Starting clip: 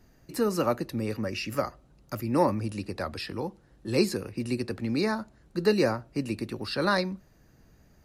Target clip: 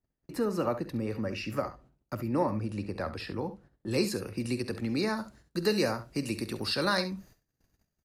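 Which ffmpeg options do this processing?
ffmpeg -i in.wav -af "agate=range=-28dB:threshold=-54dB:ratio=16:detection=peak,asetnsamples=nb_out_samples=441:pad=0,asendcmd='3.91 highshelf g 3;5.17 highshelf g 8.5',highshelf=frequency=3200:gain=-9,acompressor=threshold=-31dB:ratio=1.5,aecho=1:1:48|68:0.141|0.224" out.wav

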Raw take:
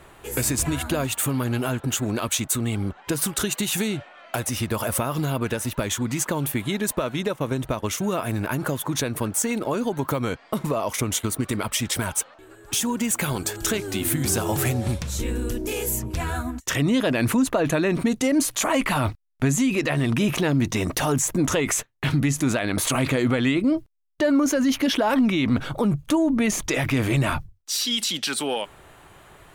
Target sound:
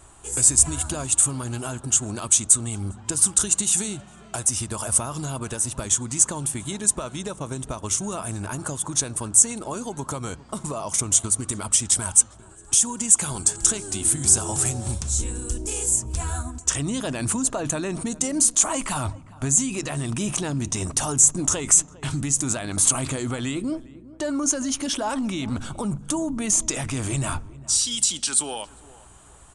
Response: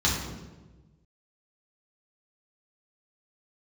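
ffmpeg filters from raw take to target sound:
-filter_complex "[0:a]aeval=exprs='val(0)+0.00251*(sin(2*PI*60*n/s)+sin(2*PI*2*60*n/s)/2+sin(2*PI*3*60*n/s)/3+sin(2*PI*4*60*n/s)/4+sin(2*PI*5*60*n/s)/5)':channel_layout=same,equalizer=frequency=125:width_type=o:width=1:gain=-4,equalizer=frequency=250:width_type=o:width=1:gain=-6,equalizer=frequency=500:width_type=o:width=1:gain=-8,equalizer=frequency=2000:width_type=o:width=1:gain=-11,equalizer=frequency=4000:width_type=o:width=1:gain=-5,equalizer=frequency=8000:width_type=o:width=1:gain=12,asplit=2[link_01][link_02];[link_02]adelay=404,lowpass=frequency=1200:poles=1,volume=-18.5dB,asplit=2[link_03][link_04];[link_04]adelay=404,lowpass=frequency=1200:poles=1,volume=0.35,asplit=2[link_05][link_06];[link_06]adelay=404,lowpass=frequency=1200:poles=1,volume=0.35[link_07];[link_01][link_03][link_05][link_07]amix=inputs=4:normalize=0,asplit=2[link_08][link_09];[1:a]atrim=start_sample=2205,lowpass=4200[link_10];[link_09][link_10]afir=irnorm=-1:irlink=0,volume=-34.5dB[link_11];[link_08][link_11]amix=inputs=2:normalize=0,aresample=22050,aresample=44100,volume=1dB"

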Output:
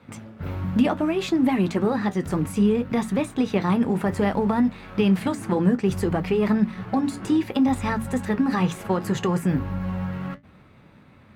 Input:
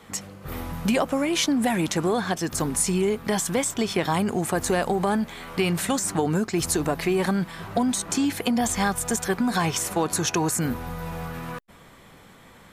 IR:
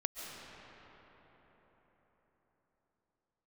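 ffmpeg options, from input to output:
-filter_complex "[0:a]highpass=50,bass=frequency=250:gain=11,treble=frequency=4000:gain=-15,bandreject=frequency=50:width_type=h:width=6,bandreject=frequency=100:width_type=h:width=6,bandreject=frequency=150:width_type=h:width=6,bandreject=frequency=200:width_type=h:width=6,bandreject=frequency=250:width_type=h:width=6,asplit=2[link_01][link_02];[link_02]aeval=exprs='sgn(val(0))*max(abs(val(0))-0.01,0)':channel_layout=same,volume=-5dB[link_03];[link_01][link_03]amix=inputs=2:normalize=0,flanger=delay=7.4:depth=7.1:regen=-62:speed=0.57:shape=triangular,asetrate=49392,aresample=44100,volume=-1.5dB"

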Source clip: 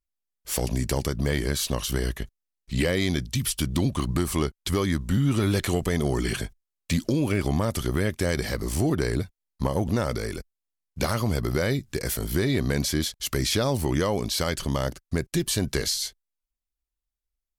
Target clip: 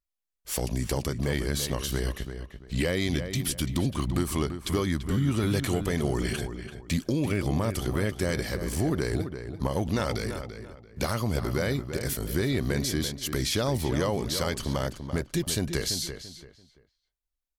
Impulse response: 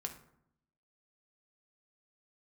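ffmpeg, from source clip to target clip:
-filter_complex "[0:a]asettb=1/sr,asplit=3[link_01][link_02][link_03];[link_01]atrim=end=9.714[link_04];[link_02]atrim=start=9.71:end=10.24,asetpts=PTS-STARTPTS,afade=type=in:duration=0.004:curve=qsin,afade=type=out:start_time=0.526:duration=0.004:curve=qsin,equalizer=frequency=3200:width_type=o:width=1.9:gain=6.5[link_05];[link_03]atrim=start=10.236[link_06];[link_04][link_05]acrossfade=duration=0.004:curve1=hsin:curve2=qsin[link_07];[link_07][link_06]acrossfade=duration=0.004:curve1=qsin:curve2=hsin,asplit=2[link_08][link_09];[link_09]adelay=338,lowpass=frequency=2700:poles=1,volume=-8.5dB,asplit=2[link_10][link_11];[link_11]adelay=338,lowpass=frequency=2700:poles=1,volume=0.28,asplit=2[link_12][link_13];[link_13]adelay=338,lowpass=frequency=2700:poles=1,volume=0.28[link_14];[link_08][link_10][link_12][link_14]amix=inputs=4:normalize=0,volume=-3dB"

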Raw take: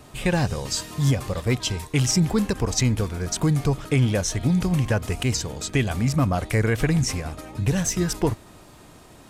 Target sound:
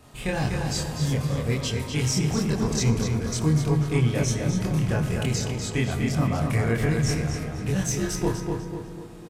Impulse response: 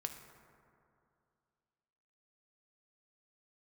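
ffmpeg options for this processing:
-filter_complex "[0:a]asplit=2[link_01][link_02];[link_02]adelay=247,lowpass=frequency=4900:poles=1,volume=-4.5dB,asplit=2[link_03][link_04];[link_04]adelay=247,lowpass=frequency=4900:poles=1,volume=0.44,asplit=2[link_05][link_06];[link_06]adelay=247,lowpass=frequency=4900:poles=1,volume=0.44,asplit=2[link_07][link_08];[link_08]adelay=247,lowpass=frequency=4900:poles=1,volume=0.44,asplit=2[link_09][link_10];[link_10]adelay=247,lowpass=frequency=4900:poles=1,volume=0.44[link_11];[link_01][link_03][link_05][link_07][link_09][link_11]amix=inputs=6:normalize=0,asplit=2[link_12][link_13];[1:a]atrim=start_sample=2205,adelay=26[link_14];[link_13][link_14]afir=irnorm=-1:irlink=0,volume=2.5dB[link_15];[link_12][link_15]amix=inputs=2:normalize=0,volume=-7dB"

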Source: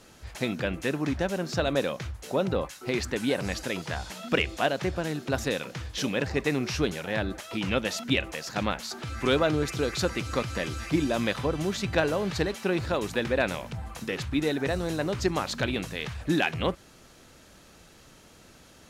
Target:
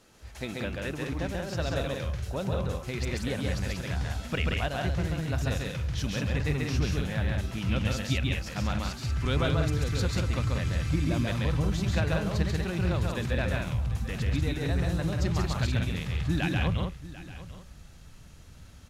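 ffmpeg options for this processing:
ffmpeg -i in.wav -filter_complex "[0:a]asplit=2[link_01][link_02];[link_02]aecho=0:1:743:0.15[link_03];[link_01][link_03]amix=inputs=2:normalize=0,asubboost=boost=7:cutoff=130,asplit=2[link_04][link_05];[link_05]aecho=0:1:137|186.6:0.794|0.562[link_06];[link_04][link_06]amix=inputs=2:normalize=0,volume=-6.5dB" out.wav

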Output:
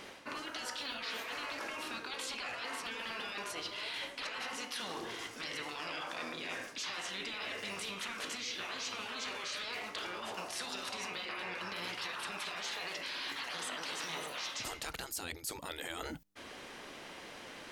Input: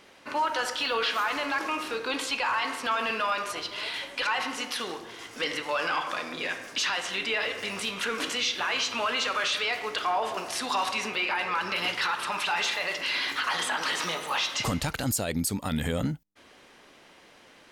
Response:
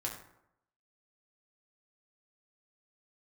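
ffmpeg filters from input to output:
-af "afftfilt=real='re*lt(hypot(re,im),0.1)':imag='im*lt(hypot(re,im),0.1)':win_size=1024:overlap=0.75,areverse,acompressor=threshold=-45dB:ratio=5,areverse,volume=5.5dB"

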